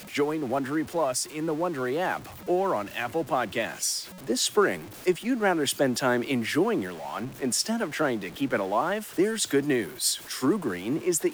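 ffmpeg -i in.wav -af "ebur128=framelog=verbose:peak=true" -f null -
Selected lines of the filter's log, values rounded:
Integrated loudness:
  I:         -27.1 LUFS
  Threshold: -37.1 LUFS
Loudness range:
  LRA:         2.3 LU
  Threshold: -47.0 LUFS
  LRA low:   -28.3 LUFS
  LRA high:  -25.9 LUFS
True peak:
  Peak:      -10.0 dBFS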